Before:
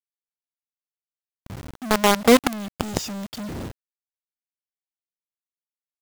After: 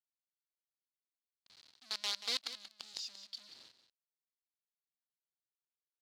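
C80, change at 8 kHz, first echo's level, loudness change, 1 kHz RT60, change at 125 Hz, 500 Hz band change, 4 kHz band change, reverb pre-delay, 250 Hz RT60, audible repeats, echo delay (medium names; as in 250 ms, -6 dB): no reverb, -17.5 dB, -12.0 dB, -18.5 dB, no reverb, under -40 dB, -35.5 dB, -9.0 dB, no reverb, no reverb, 1, 183 ms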